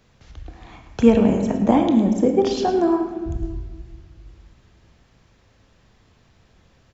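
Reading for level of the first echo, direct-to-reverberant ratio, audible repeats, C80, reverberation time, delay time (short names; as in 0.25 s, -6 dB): -12.0 dB, 4.0 dB, 1, 6.5 dB, 1.5 s, 0.108 s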